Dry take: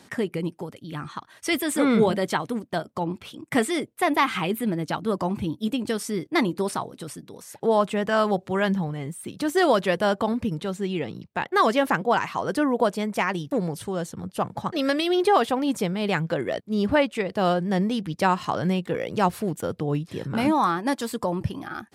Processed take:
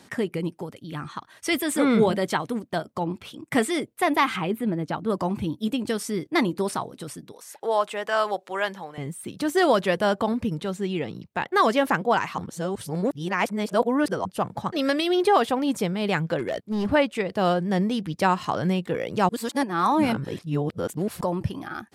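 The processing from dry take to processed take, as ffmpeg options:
ffmpeg -i in.wav -filter_complex "[0:a]asettb=1/sr,asplit=3[link_01][link_02][link_03];[link_01]atrim=end=4.364[link_04];[link_02]atrim=start=4.36:end=5.1,asetpts=PTS-STARTPTS,afade=type=in:duration=0.004:curve=qsin,afade=type=out:start_time=0.736:duration=0.004:curve=qsin,highshelf=frequency=2500:gain=-10[link_05];[link_03]atrim=start=5.096[link_06];[link_04][link_05]acrossfade=duration=0.004:curve1=hsin:curve2=qsin[link_07];[link_07][link_06]acrossfade=duration=0.004:curve1=qsin:curve2=hsin,asettb=1/sr,asplit=3[link_08][link_09][link_10];[link_08]atrim=end=7.324[link_11];[link_09]atrim=start=7.32:end=8.98,asetpts=PTS-STARTPTS,afade=type=in:duration=0.004:curve=qsin,afade=type=out:start_time=1.656:duration=0.004:curve=qsin,highpass=540[link_12];[link_10]atrim=start=8.976[link_13];[link_11][link_12]acrossfade=duration=0.004:curve1=hsin:curve2=qsin[link_14];[link_14][link_13]acrossfade=duration=0.004:curve1=qsin:curve2=hsin,asettb=1/sr,asplit=3[link_15][link_16][link_17];[link_15]atrim=end=16.384[link_18];[link_16]atrim=start=16.38:end=16.86,asetpts=PTS-STARTPTS,afade=type=in:duration=0.004:curve=qsin,afade=type=out:start_time=0.476:duration=0.004:curve=qsin,volume=22dB,asoftclip=hard,volume=-22dB[link_19];[link_17]atrim=start=16.856[link_20];[link_18][link_19]acrossfade=duration=0.004:curve1=hsin:curve2=qsin[link_21];[link_21][link_20]acrossfade=duration=0.004:curve1=qsin:curve2=hsin,asplit=5[link_22][link_23][link_24][link_25][link_26];[link_22]atrim=end=12.382[link_27];[link_23]atrim=start=12.378:end=14.252,asetpts=PTS-STARTPTS,areverse[link_28];[link_24]atrim=start=14.248:end=19.292[link_29];[link_25]atrim=start=19.288:end=21.212,asetpts=PTS-STARTPTS,areverse[link_30];[link_26]atrim=start=21.208[link_31];[link_27][link_28]acrossfade=duration=0.004:curve1=hsin:curve2=hsin[link_32];[link_32][link_29]acrossfade=duration=0.004:curve1=hsin:curve2=hsin[link_33];[link_33][link_30]acrossfade=duration=0.004:curve1=hsin:curve2=hsin[link_34];[link_34][link_31]acrossfade=duration=0.004:curve1=hsin:curve2=hsin" out.wav

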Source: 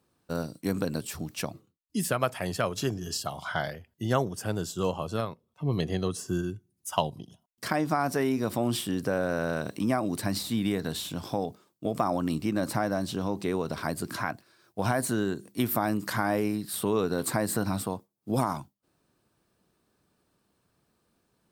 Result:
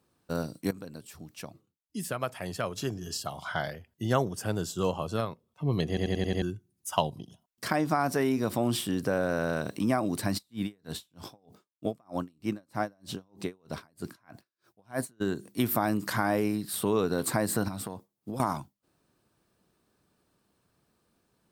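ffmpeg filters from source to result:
ffmpeg -i in.wav -filter_complex "[0:a]asplit=3[link_01][link_02][link_03];[link_01]afade=type=out:start_time=10.37:duration=0.02[link_04];[link_02]aeval=exprs='val(0)*pow(10,-39*(0.5-0.5*cos(2*PI*3.2*n/s))/20)':channel_layout=same,afade=type=in:start_time=10.37:duration=0.02,afade=type=out:start_time=15.2:duration=0.02[link_05];[link_03]afade=type=in:start_time=15.2:duration=0.02[link_06];[link_04][link_05][link_06]amix=inputs=3:normalize=0,asettb=1/sr,asplit=3[link_07][link_08][link_09];[link_07]atrim=end=17.684[link_10];[link_08]atrim=start=17.68:end=18.4,asetpts=PTS-STARTPTS,afade=type=in:duration=0.004:curve=qsin,afade=type=out:start_time=0.716:duration=0.004:curve=qsin,acompressor=threshold=-31dB:ratio=10:attack=3.2:release=140:knee=1:detection=peak[link_11];[link_09]atrim=start=18.396[link_12];[link_10][link_11]acrossfade=duration=0.004:curve1=hsin:curve2=qsin[link_13];[link_13][link_12]acrossfade=duration=0.004:curve1=qsin:curve2=hsin,asplit=8[link_14][link_15][link_16][link_17][link_18][link_19][link_20][link_21];[link_14]atrim=end=0.71,asetpts=PTS-STARTPTS,afade=type=out:start_time=0.706:duration=0.004:curve=hsin:silence=0.188365[link_22];[link_15]atrim=start=0.71:end=5.972,asetpts=PTS-STARTPTS,afade=type=in:duration=3.53:silence=0.188365[link_23];[link_16]atrim=start=5.878:end=5.972[link_24];[link_17]atrim=start=5.878:end=5.972[link_25];[link_18]atrim=start=5.878:end=5.972[link_26];[link_19]atrim=start=5.878:end=5.972[link_27];[link_20]atrim=start=5.878:end=5.972[link_28];[link_21]atrim=start=6.418[link_29];[link_22][link_23]concat=n=2:v=0:a=1[link_30];[link_30][link_24]acrossfade=duration=0.004:curve1=hsin:curve2=hsin[link_31];[link_31][link_25]acrossfade=duration=0.004:curve1=hsin:curve2=hsin[link_32];[link_32][link_26]acrossfade=duration=0.004:curve1=hsin:curve2=hsin[link_33];[link_33][link_27]acrossfade=duration=0.004:curve1=hsin:curve2=hsin[link_34];[link_34][link_28]acrossfade=duration=0.004:curve1=hsin:curve2=hsin[link_35];[link_35][link_29]acrossfade=duration=0.004:curve1=hsin:curve2=hsin" out.wav

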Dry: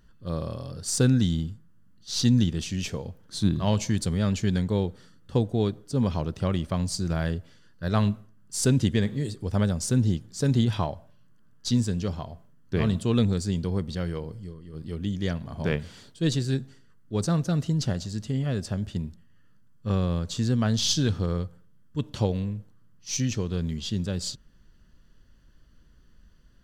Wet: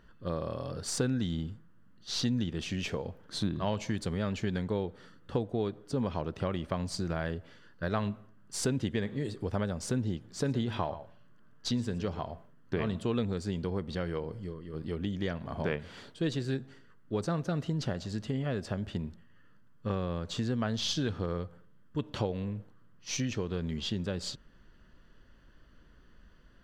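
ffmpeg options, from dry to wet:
ffmpeg -i in.wav -filter_complex "[0:a]asettb=1/sr,asplit=3[link_01][link_02][link_03];[link_01]atrim=end=10.254[link_04];[link_02]atrim=start=10.25:end=12.31,asetpts=PTS-STARTPTS,afade=type=in:duration=0.004:curve=qsin,afade=type=out:start_time=2.056:duration=0.004:curve=qsin,aecho=1:1:116:0.15,atrim=end_sample=90846[link_05];[link_03]atrim=start=12.306[link_06];[link_04][link_05]acrossfade=duration=0.004:curve1=hsin:curve2=qsin[link_07];[link_07][link_06]acrossfade=duration=0.004:curve1=qsin:curve2=hsin,bass=frequency=250:gain=-8,treble=frequency=4000:gain=-13,acompressor=threshold=-37dB:ratio=2.5,volume=5.5dB" out.wav

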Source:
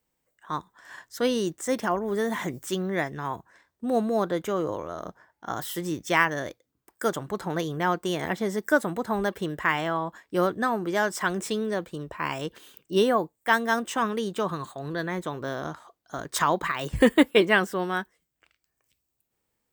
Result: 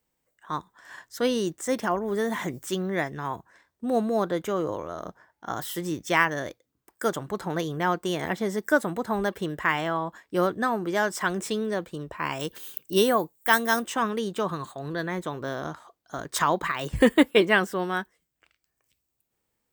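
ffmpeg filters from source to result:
ffmpeg -i in.wav -filter_complex "[0:a]asettb=1/sr,asplit=3[link_01][link_02][link_03];[link_01]atrim=end=12.404[link_04];[link_02]atrim=start=12.4:end=13.85,asetpts=PTS-STARTPTS,afade=type=in:duration=0.004:curve=qsin,afade=type=out:start_time=1.446:duration=0.004:curve=qsin,aemphasis=mode=production:type=50kf[link_05];[link_03]atrim=start=13.846[link_06];[link_04][link_05]acrossfade=duration=0.004:curve1=hsin:curve2=qsin[link_07];[link_07][link_06]acrossfade=duration=0.004:curve1=qsin:curve2=hsin" out.wav

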